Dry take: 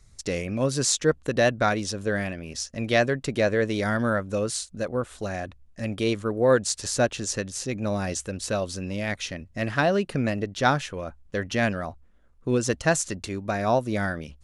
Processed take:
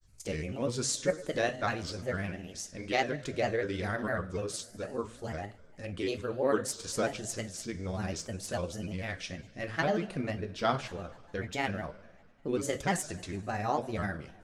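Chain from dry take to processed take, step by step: two-slope reverb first 0.29 s, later 2 s, from -18 dB, DRR 5.5 dB; grains, grains 20/s, spray 13 ms, pitch spread up and down by 3 st; gain -7.5 dB

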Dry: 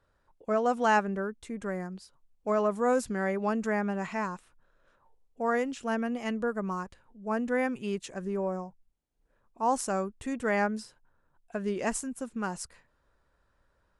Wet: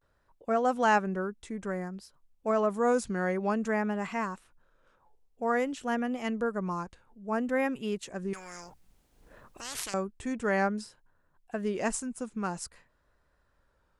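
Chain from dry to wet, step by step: vibrato 0.55 Hz 82 cents; 8.33–9.94 spectral compressor 10:1

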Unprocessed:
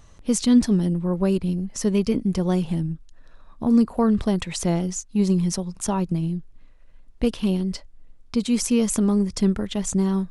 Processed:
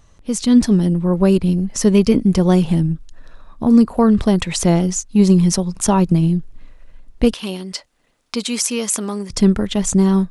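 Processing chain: 7.33–9.3 HPF 930 Hz 6 dB/oct; AGC gain up to 14 dB; gain -1 dB

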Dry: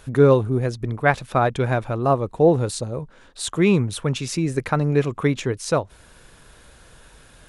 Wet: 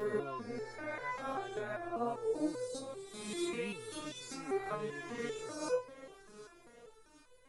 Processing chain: spectral swells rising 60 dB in 1.72 s; echo with dull and thin repeats by turns 0.379 s, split 990 Hz, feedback 69%, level -13 dB; stepped resonator 5.1 Hz 210–500 Hz; gain -7 dB

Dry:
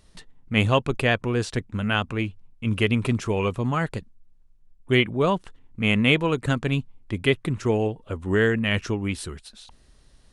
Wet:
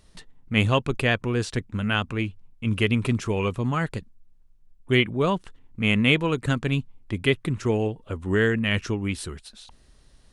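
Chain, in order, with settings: dynamic EQ 690 Hz, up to -3 dB, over -38 dBFS, Q 1.1

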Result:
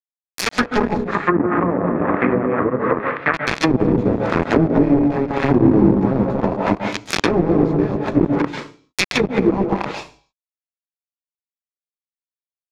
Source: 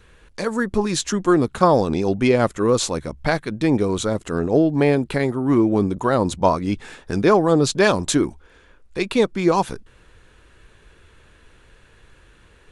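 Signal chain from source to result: tilt shelf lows -6 dB, about 1500 Hz; limiter -14.5 dBFS, peak gain reduction 11 dB; echo 0.234 s -4 dB; chorus 0.32 Hz, delay 15 ms, depth 2.6 ms; bit-crush 4-bit; 1.05–3.34 speaker cabinet 100–2200 Hz, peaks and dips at 120 Hz -8 dB, 230 Hz -4 dB, 360 Hz -3 dB, 790 Hz -4 dB, 1200 Hz +7 dB, 1800 Hz +5 dB; AGC gain up to 8 dB; reverb RT60 0.40 s, pre-delay 0.131 s, DRR 7.5 dB; treble ducked by the level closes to 450 Hz, closed at -13.5 dBFS; gain +5.5 dB

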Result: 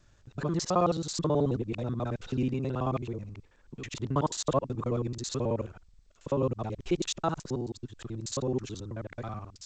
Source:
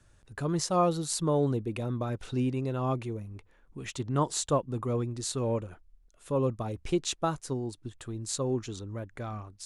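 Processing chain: local time reversal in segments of 54 ms; G.722 64 kbps 16000 Hz

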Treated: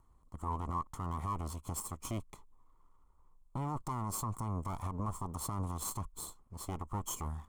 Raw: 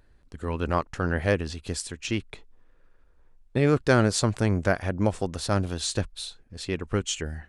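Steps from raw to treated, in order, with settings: minimum comb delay 0.94 ms; EQ curve 740 Hz 0 dB, 1100 Hz +11 dB, 1600 Hz -12 dB, 5000 Hz -10 dB, 7200 Hz +4 dB; limiter -22 dBFS, peak gain reduction 16.5 dB; gain -5.5 dB

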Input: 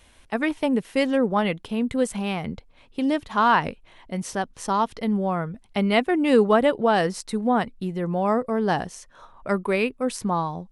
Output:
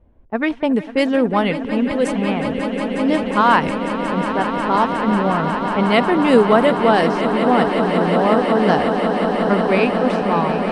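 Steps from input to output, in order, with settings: low-pass opened by the level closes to 460 Hz, open at -16 dBFS; swelling echo 0.181 s, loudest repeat 8, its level -12 dB; gain +4.5 dB

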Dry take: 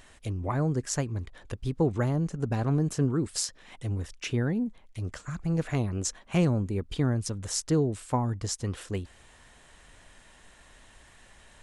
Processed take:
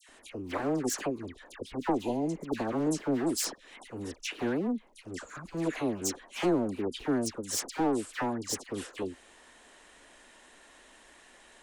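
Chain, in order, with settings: one-sided fold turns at -27 dBFS; resonant low shelf 190 Hz -13.5 dB, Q 1.5; dispersion lows, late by 92 ms, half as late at 1600 Hz; spectral repair 2.03–2.45, 1000–2400 Hz before

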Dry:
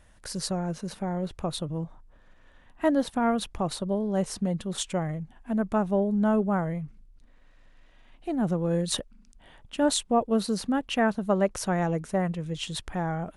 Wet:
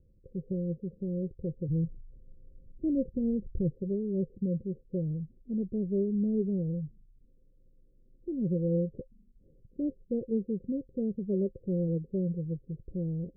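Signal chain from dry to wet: 1.68–3.7 low shelf 140 Hz +11.5 dB; rippled Chebyshev low-pass 540 Hz, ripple 6 dB

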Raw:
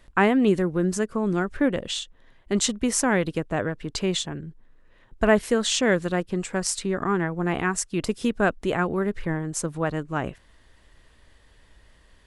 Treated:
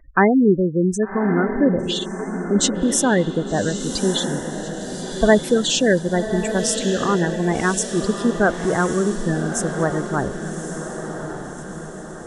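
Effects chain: spectral gate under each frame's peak -15 dB strong; diffused feedback echo 1.161 s, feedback 53%, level -8 dB; gain +5 dB

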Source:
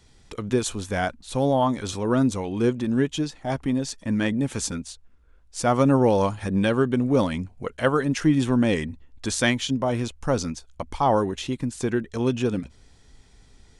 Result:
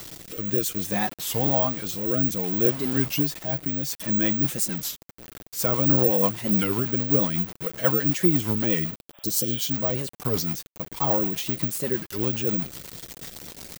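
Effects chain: zero-crossing step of -30 dBFS; HPF 92 Hz 12 dB/oct; high shelf 5200 Hz +6.5 dB; comb 6.2 ms, depth 48%; dynamic EQ 170 Hz, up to +4 dB, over -37 dBFS, Q 3; requantised 6-bit, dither none; rotary speaker horn 0.6 Hz, later 8 Hz, at 3.73; spectral repair 9.17–9.63, 520–3700 Hz both; careless resampling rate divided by 2×, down filtered, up zero stuff; record warp 33 1/3 rpm, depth 250 cents; gain -4 dB

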